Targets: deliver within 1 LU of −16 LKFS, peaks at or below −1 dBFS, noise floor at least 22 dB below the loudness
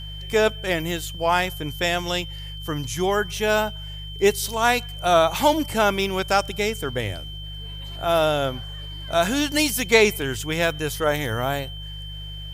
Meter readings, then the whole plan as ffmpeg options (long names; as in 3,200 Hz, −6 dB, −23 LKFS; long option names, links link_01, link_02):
mains hum 50 Hz; hum harmonics up to 150 Hz; level of the hum −33 dBFS; interfering tone 3,100 Hz; level of the tone −37 dBFS; integrated loudness −22.5 LKFS; sample peak −3.0 dBFS; target loudness −16.0 LKFS
→ -af "bandreject=frequency=50:width_type=h:width=4,bandreject=frequency=100:width_type=h:width=4,bandreject=frequency=150:width_type=h:width=4"
-af "bandreject=frequency=3100:width=30"
-af "volume=6.5dB,alimiter=limit=-1dB:level=0:latency=1"